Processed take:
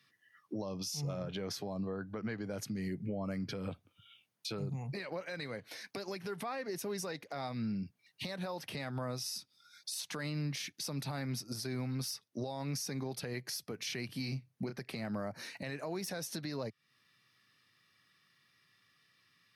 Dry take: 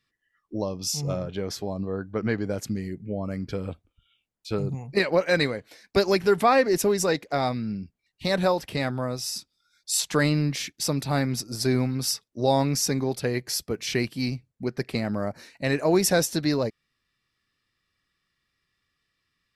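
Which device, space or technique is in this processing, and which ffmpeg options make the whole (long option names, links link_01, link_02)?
podcast mastering chain: -filter_complex "[0:a]highpass=frequency=96:width=0.5412,highpass=frequency=96:width=1.3066,equalizer=frequency=360:width=0.78:gain=-4.5,asettb=1/sr,asplit=3[link_01][link_02][link_03];[link_01]atrim=end=14.064[link_04];[link_02]atrim=start=14.06:end=14.81,asetpts=PTS-STARTPTS,afade=type=in:duration=0.004:curve=qsin,afade=type=out:start_time=0.746:duration=0.004:curve=qsin,asplit=2[link_05][link_06];[link_06]adelay=30,volume=-8dB[link_07];[link_05][link_07]amix=inputs=2:normalize=0,atrim=end_sample=33075[link_08];[link_03]atrim=start=14.806[link_09];[link_04][link_08]acrossfade=duration=0.004:curve1=hsin:curve2=qsin[link_10];[link_10][link_09]acrossfade=duration=0.004:curve1=qsin:curve2=hsin,highpass=frequency=98:width=0.5412,highpass=frequency=98:width=1.3066,bandreject=frequency=7500:width=5.7,deesser=0.4,acompressor=threshold=-43dB:ratio=3,alimiter=level_in=13dB:limit=-24dB:level=0:latency=1:release=133,volume=-13dB,volume=7.5dB" -ar 48000 -c:a libmp3lame -b:a 96k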